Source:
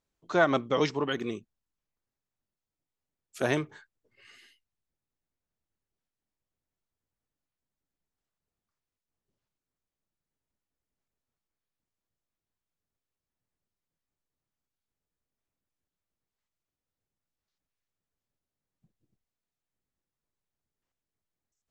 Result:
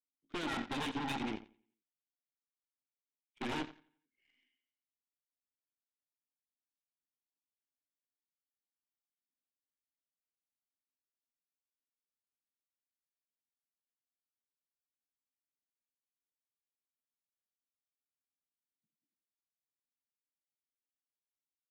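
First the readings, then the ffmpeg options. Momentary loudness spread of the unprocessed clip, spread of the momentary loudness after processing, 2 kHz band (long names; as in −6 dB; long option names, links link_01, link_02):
13 LU, 8 LU, −10.5 dB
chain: -filter_complex "[0:a]acontrast=40,asplit=3[link_01][link_02][link_03];[link_01]bandpass=frequency=270:width_type=q:width=8,volume=0dB[link_04];[link_02]bandpass=frequency=2290:width_type=q:width=8,volume=-6dB[link_05];[link_03]bandpass=frequency=3010:width_type=q:width=8,volume=-9dB[link_06];[link_04][link_05][link_06]amix=inputs=3:normalize=0,aresample=8000,aeval=exprs='0.0188*(abs(mod(val(0)/0.0188+3,4)-2)-1)':channel_layout=same,aresample=44100,aecho=1:1:87|174|261|348|435:0.355|0.17|0.0817|0.0392|0.0188,aeval=exprs='0.0335*(cos(1*acos(clip(val(0)/0.0335,-1,1)))-cos(1*PI/2))+0.00299*(cos(6*acos(clip(val(0)/0.0335,-1,1)))-cos(6*PI/2))+0.00422*(cos(7*acos(clip(val(0)/0.0335,-1,1)))-cos(7*PI/2))+0.00119*(cos(8*acos(clip(val(0)/0.0335,-1,1)))-cos(8*PI/2))':channel_layout=same,volume=1.5dB"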